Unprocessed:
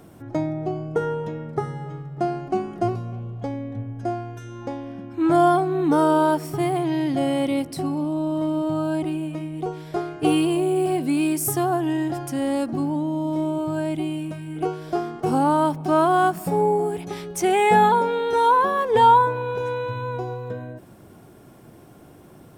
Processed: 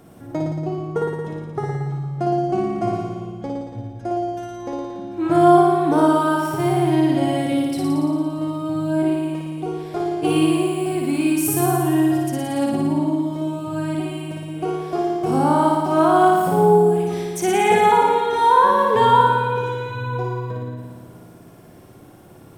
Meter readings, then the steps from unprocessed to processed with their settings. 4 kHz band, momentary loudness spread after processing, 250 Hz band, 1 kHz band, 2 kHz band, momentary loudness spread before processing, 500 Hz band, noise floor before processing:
+3.0 dB, 15 LU, +3.5 dB, +2.5 dB, +2.5 dB, 14 LU, +3.0 dB, -47 dBFS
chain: flutter echo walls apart 9.8 m, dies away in 1.5 s; gain -1 dB

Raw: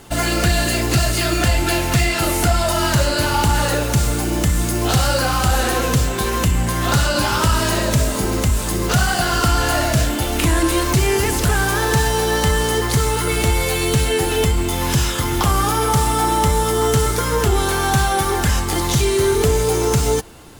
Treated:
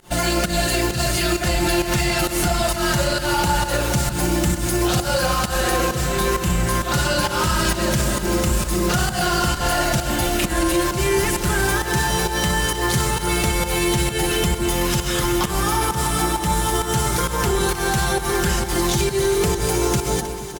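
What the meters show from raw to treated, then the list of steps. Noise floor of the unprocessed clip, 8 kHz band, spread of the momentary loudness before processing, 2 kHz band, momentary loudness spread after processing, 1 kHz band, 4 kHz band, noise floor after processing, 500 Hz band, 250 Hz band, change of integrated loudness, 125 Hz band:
-21 dBFS, -1.5 dB, 2 LU, -1.5 dB, 1 LU, -2.5 dB, -1.5 dB, -27 dBFS, -2.5 dB, -1.0 dB, -2.5 dB, -4.5 dB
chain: comb 5.6 ms, depth 57%; de-hum 46.35 Hz, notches 30; limiter -11 dBFS, peak gain reduction 6 dB; pump 132 bpm, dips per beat 1, -22 dB, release 0.142 s; on a send: echo with dull and thin repeats by turns 0.157 s, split 1100 Hz, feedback 82%, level -10 dB

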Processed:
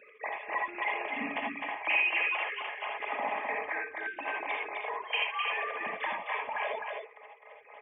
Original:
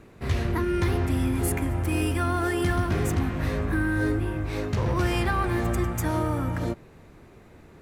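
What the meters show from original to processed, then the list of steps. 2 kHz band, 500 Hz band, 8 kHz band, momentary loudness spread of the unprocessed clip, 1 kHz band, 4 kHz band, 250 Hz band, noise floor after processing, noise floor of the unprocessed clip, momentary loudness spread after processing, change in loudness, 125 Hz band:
+2.0 dB, -9.5 dB, under -40 dB, 4 LU, -2.0 dB, +0.5 dB, -21.0 dB, -55 dBFS, -51 dBFS, 10 LU, -6.0 dB, under -40 dB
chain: sine-wave speech; HPF 490 Hz 12 dB/oct; dynamic EQ 2400 Hz, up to +6 dB, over -41 dBFS, Q 1.1; comb 4.8 ms, depth 44%; compressor 6:1, threshold -36 dBFS, peak gain reduction 20.5 dB; step gate "x.x..x.xxxx." 155 bpm -12 dB; fixed phaser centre 1400 Hz, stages 6; echo 0.258 s -4 dB; non-linear reverb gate 0.1 s rising, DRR 0.5 dB; gain +7.5 dB

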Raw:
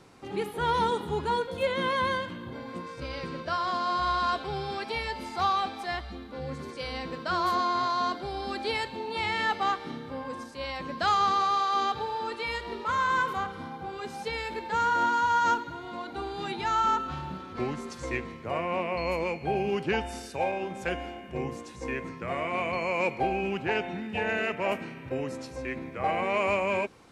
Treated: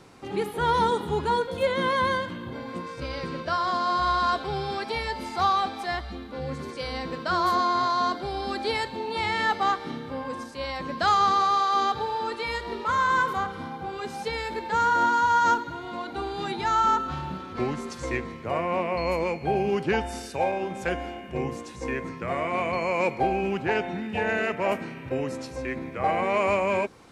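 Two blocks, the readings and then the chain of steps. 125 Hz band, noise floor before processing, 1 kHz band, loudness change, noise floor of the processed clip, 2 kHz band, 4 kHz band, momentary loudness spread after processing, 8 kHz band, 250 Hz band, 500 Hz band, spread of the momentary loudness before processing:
+3.5 dB, -44 dBFS, +3.5 dB, +3.0 dB, -40 dBFS, +2.5 dB, +2.0 dB, 12 LU, +3.5 dB, +3.5 dB, +3.5 dB, 12 LU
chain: dynamic EQ 2700 Hz, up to -5 dB, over -47 dBFS, Q 2.9; gain +3.5 dB

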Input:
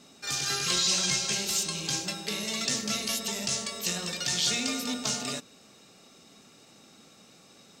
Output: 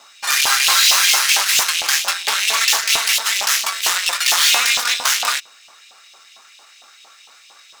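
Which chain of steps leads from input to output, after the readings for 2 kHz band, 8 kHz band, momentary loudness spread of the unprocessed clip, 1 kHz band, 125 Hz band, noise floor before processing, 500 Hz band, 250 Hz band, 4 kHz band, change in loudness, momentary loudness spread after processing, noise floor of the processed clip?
+18.0 dB, +12.0 dB, 7 LU, +17.5 dB, under -15 dB, -56 dBFS, +3.5 dB, under -10 dB, +13.5 dB, +13.5 dB, 6 LU, -48 dBFS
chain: median filter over 3 samples; added harmonics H 5 -22 dB, 7 -25 dB, 8 -9 dB, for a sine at -15.5 dBFS; LFO high-pass saw up 4.4 Hz 800–3100 Hz; gain +9 dB

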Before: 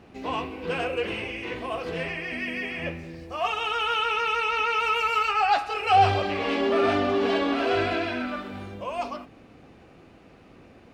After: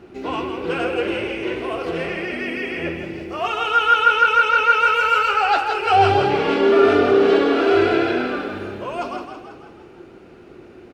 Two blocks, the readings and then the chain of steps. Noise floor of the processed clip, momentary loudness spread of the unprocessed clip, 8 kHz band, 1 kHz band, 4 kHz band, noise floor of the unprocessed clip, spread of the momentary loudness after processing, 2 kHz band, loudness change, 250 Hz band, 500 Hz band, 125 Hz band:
-44 dBFS, 11 LU, n/a, +6.5 dB, +4.0 dB, -52 dBFS, 14 LU, +8.0 dB, +7.5 dB, +7.5 dB, +9.0 dB, +3.5 dB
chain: small resonant body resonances 360/1400 Hz, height 14 dB, ringing for 65 ms; on a send: frequency-shifting echo 0.163 s, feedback 54%, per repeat +33 Hz, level -7 dB; on the sum: gain +2.5 dB

